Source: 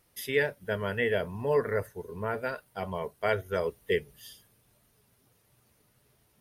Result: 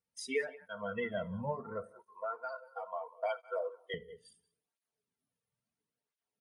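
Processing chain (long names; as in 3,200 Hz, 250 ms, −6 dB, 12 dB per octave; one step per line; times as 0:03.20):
Butterworth low-pass 10,000 Hz 96 dB per octave
noise reduction from a noise print of the clip's start 25 dB
0:01.85–0:03.94: Butterworth high-pass 440 Hz 36 dB per octave
comb filter 4.4 ms, depth 35%
downward compressor 3 to 1, threshold −37 dBFS, peak gain reduction 13.5 dB
slap from a distant wall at 32 metres, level −19 dB
rectangular room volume 920 cubic metres, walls furnished, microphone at 0.42 metres
through-zero flanger with one copy inverted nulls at 0.73 Hz, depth 3.2 ms
level +3.5 dB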